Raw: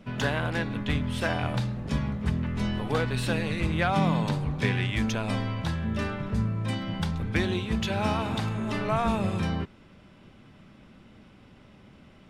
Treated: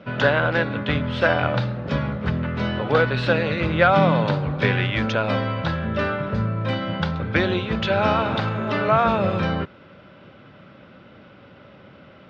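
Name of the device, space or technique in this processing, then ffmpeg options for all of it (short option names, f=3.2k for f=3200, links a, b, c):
guitar cabinet: -af "highpass=96,equalizer=f=220:t=q:w=4:g=-4,equalizer=f=550:t=q:w=4:g=9,equalizer=f=1.4k:t=q:w=4:g=8,lowpass=f=4.5k:w=0.5412,lowpass=f=4.5k:w=1.3066,volume=6dB"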